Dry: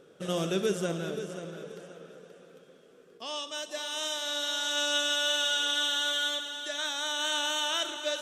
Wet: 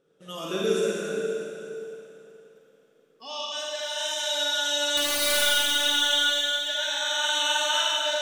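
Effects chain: spectral noise reduction 14 dB; 4.97–5.42 s: integer overflow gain 22 dB; Schroeder reverb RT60 2.6 s, DRR -4.5 dB

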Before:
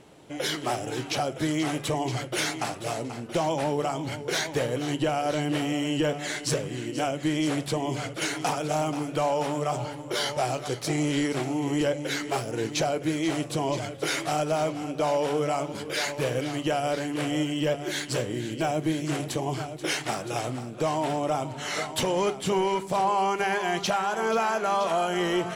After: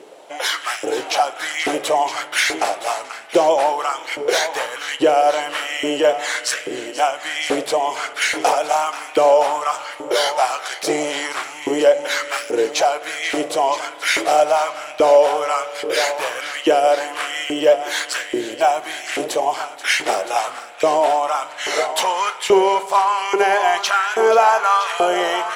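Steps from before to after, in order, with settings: LFO high-pass saw up 1.2 Hz 380–2100 Hz; spring tank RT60 3.1 s, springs 33 ms, chirp 50 ms, DRR 16.5 dB; trim +7.5 dB

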